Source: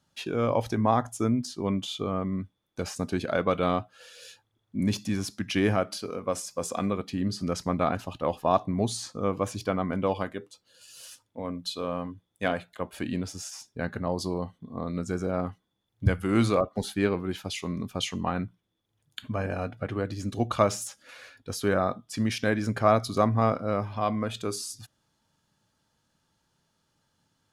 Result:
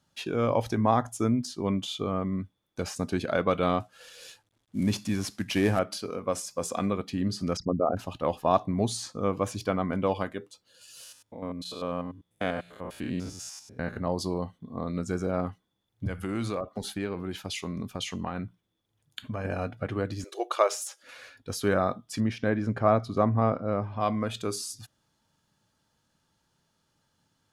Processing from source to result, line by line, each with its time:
3.8–5.79 CVSD 64 kbps
7.57–7.97 formant sharpening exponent 3
11.03–13.97 stepped spectrum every 0.1 s
16.05–19.45 compressor 3:1, threshold -29 dBFS
20.24–21.03 brick-wall FIR high-pass 330 Hz
22.2–24 LPF 1300 Hz 6 dB/oct

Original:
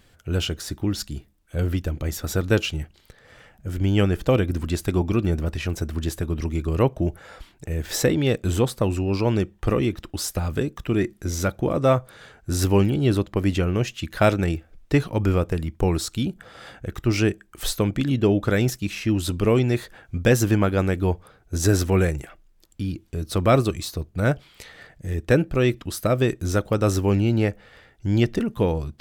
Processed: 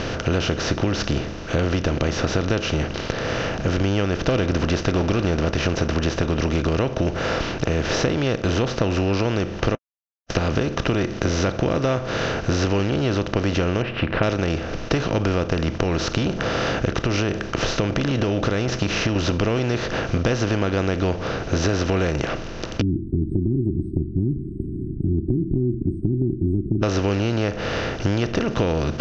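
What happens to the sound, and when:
4.27–5.94 sample leveller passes 1
9.75–10.3 mute
13.82–14.23 elliptic low-pass 2600 Hz, stop band 60 dB
15.71–19.16 compressor, threshold -24 dBFS
22.81–26.83 brick-wall FIR band-stop 380–8100 Hz
whole clip: per-bin compression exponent 0.4; compressor, threshold -19 dBFS; steep low-pass 6300 Hz 72 dB/oct; gain +1.5 dB

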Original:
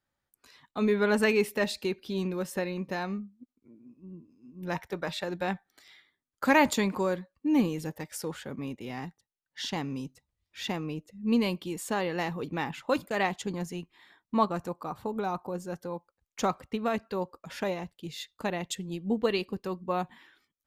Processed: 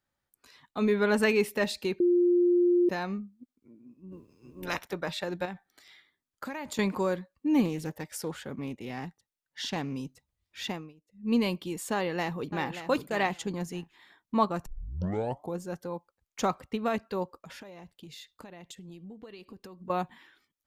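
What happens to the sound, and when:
2–2.89 bleep 352 Hz -19.5 dBFS
4.11–4.91 spectral limiter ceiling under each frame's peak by 19 dB
5.45–6.79 compressor, threshold -34 dBFS
7.65–9.96 Doppler distortion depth 0.15 ms
10.64–11.36 dip -23 dB, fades 0.29 s
11.94–12.87 echo throw 0.58 s, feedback 15%, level -11 dB
14.66 tape start 0.91 s
17.39–19.9 compressor 16:1, threshold -42 dBFS

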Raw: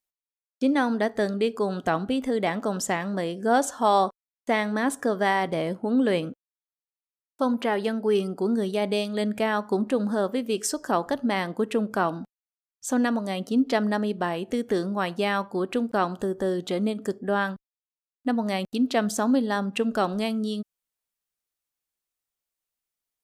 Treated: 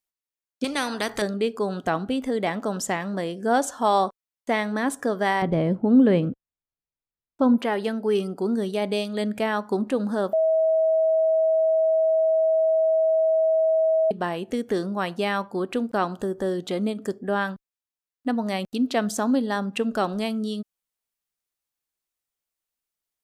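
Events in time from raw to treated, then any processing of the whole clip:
0.64–1.22 spectral compressor 2:1
5.42–7.58 RIAA curve playback
10.33–14.11 bleep 642 Hz -17 dBFS

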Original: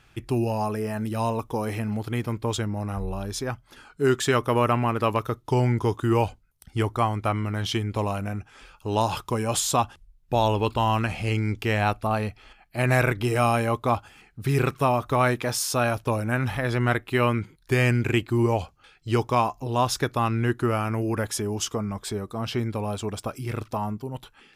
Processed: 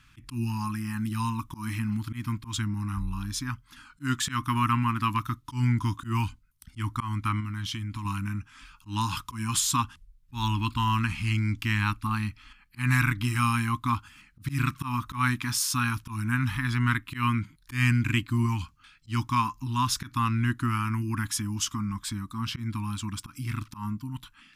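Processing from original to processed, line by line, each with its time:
7.4–8.05 compressor 3:1, threshold -30 dBFS
whole clip: elliptic band-stop 290–1000 Hz, stop band 40 dB; auto swell 0.123 s

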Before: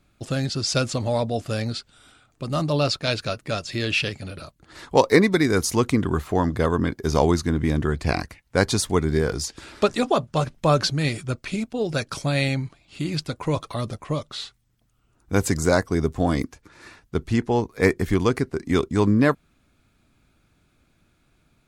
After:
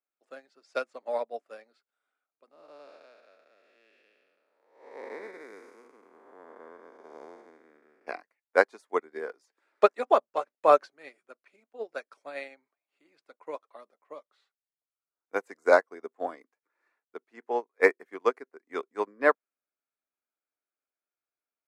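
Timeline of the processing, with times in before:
2.51–8.07 time blur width 0.481 s
whole clip: steep high-pass 240 Hz 36 dB/oct; band shelf 990 Hz +12.5 dB 2.8 oct; upward expander 2.5:1, over -25 dBFS; gain -9 dB

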